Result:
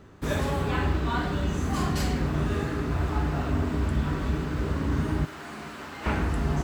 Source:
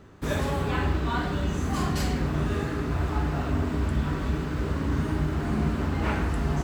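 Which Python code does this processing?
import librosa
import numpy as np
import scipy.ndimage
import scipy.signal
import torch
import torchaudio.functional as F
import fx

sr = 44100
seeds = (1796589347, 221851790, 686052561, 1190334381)

y = fx.highpass(x, sr, hz=1300.0, slope=6, at=(5.25, 6.06))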